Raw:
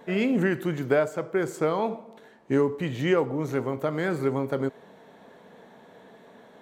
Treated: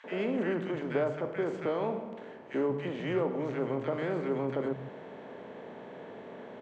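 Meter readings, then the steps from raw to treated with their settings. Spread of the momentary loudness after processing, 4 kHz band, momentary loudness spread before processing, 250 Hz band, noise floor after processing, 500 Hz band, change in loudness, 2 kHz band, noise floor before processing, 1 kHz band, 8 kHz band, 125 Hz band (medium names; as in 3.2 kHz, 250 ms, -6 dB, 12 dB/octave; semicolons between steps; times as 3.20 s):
15 LU, -7.5 dB, 5 LU, -6.5 dB, -47 dBFS, -5.0 dB, -6.0 dB, -8.0 dB, -53 dBFS, -6.0 dB, no reading, -7.5 dB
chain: spectral levelling over time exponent 0.6; distance through air 170 m; three bands offset in time highs, mids, lows 40/190 ms, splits 180/1400 Hz; trim -8 dB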